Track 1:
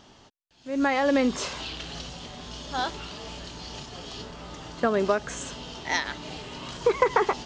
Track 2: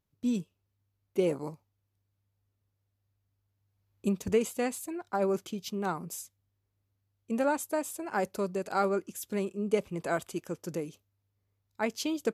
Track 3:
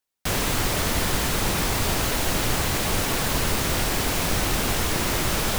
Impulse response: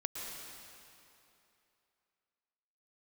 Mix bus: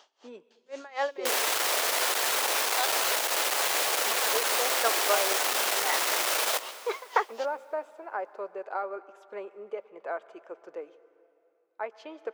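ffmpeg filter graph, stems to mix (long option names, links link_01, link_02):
-filter_complex "[0:a]aeval=exprs='val(0)*pow(10,-25*(0.5-0.5*cos(2*PI*3.9*n/s))/20)':channel_layout=same,volume=-0.5dB[link_01];[1:a]lowpass=1600,alimiter=limit=-21dB:level=0:latency=1:release=462,volume=0dB,asplit=2[link_02][link_03];[link_03]volume=-15dB[link_04];[2:a]aeval=exprs='clip(val(0),-1,0.0531)':channel_layout=same,adelay=1000,volume=-1dB,asplit=2[link_05][link_06];[link_06]volume=-11.5dB[link_07];[3:a]atrim=start_sample=2205[link_08];[link_04][link_07]amix=inputs=2:normalize=0[link_09];[link_09][link_08]afir=irnorm=-1:irlink=0[link_10];[link_01][link_02][link_05][link_10]amix=inputs=4:normalize=0,highpass=frequency=480:width=0.5412,highpass=frequency=480:width=1.3066"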